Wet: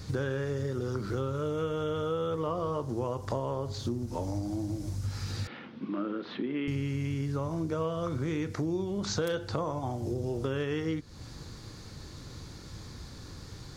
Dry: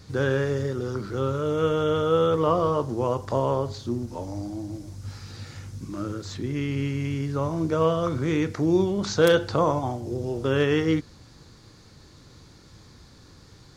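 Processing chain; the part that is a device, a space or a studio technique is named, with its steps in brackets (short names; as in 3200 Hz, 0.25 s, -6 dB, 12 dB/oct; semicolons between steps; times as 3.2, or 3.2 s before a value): 5.47–6.68 elliptic band-pass 210–3200 Hz, stop band 40 dB; ASMR close-microphone chain (low shelf 120 Hz +4.5 dB; compressor 6:1, threshold -33 dBFS, peak gain reduction 18 dB; high shelf 9000 Hz +3.5 dB); gain +3.5 dB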